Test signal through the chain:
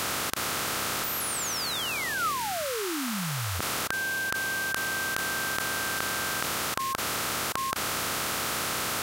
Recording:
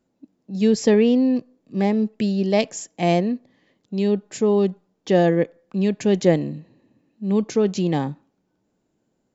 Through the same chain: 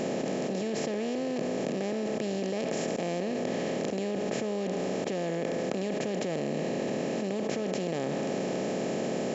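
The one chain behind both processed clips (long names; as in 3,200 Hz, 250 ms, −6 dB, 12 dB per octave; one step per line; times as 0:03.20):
compressor on every frequency bin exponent 0.2
output level in coarse steps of 23 dB
dynamic equaliser 1,300 Hz, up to +7 dB, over −45 dBFS, Q 5.1
level −8 dB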